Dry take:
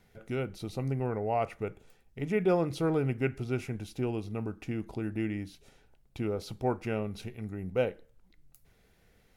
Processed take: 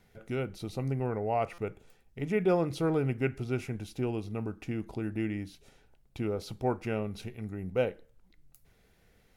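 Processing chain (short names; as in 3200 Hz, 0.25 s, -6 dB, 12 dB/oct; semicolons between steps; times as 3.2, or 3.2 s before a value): stuck buffer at 1.53, samples 256, times 8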